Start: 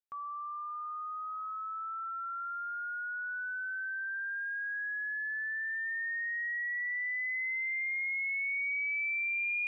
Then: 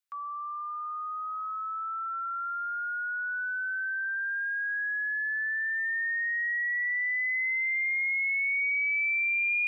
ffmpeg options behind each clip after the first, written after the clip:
ffmpeg -i in.wav -af "highpass=frequency=1100:width=0.5412,highpass=frequency=1100:width=1.3066,volume=5.5dB" out.wav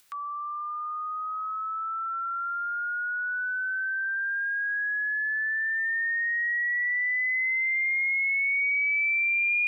ffmpeg -i in.wav -af "acompressor=mode=upward:threshold=-45dB:ratio=2.5,volume=2.5dB" out.wav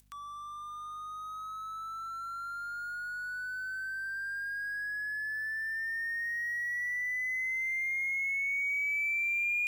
ffmpeg -i in.wav -af "bass=frequency=250:gain=7,treble=frequency=4000:gain=13,aeval=exprs='sgn(val(0))*max(abs(val(0))-0.00562,0)':channel_layout=same,aeval=exprs='val(0)+0.00126*(sin(2*PI*50*n/s)+sin(2*PI*2*50*n/s)/2+sin(2*PI*3*50*n/s)/3+sin(2*PI*4*50*n/s)/4+sin(2*PI*5*50*n/s)/5)':channel_layout=same,volume=-7dB" out.wav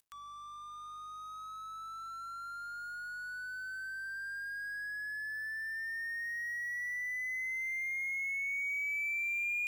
ffmpeg -i in.wav -af "aeval=exprs='sgn(val(0))*max(abs(val(0))-0.00106,0)':channel_layout=same,volume=-3.5dB" out.wav

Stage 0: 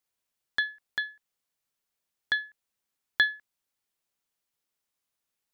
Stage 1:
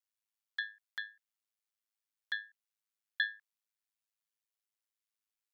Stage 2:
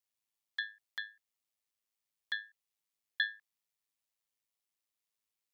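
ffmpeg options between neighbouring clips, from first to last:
ffmpeg -i in.wav -af "highpass=1100,aeval=exprs='val(0)*sin(2*PI*53*n/s)':channel_layout=same,volume=-6dB" out.wav
ffmpeg -i in.wav -af "equalizer=frequency=1500:width_type=o:width=0.24:gain=-7.5,volume=2dB" out.wav

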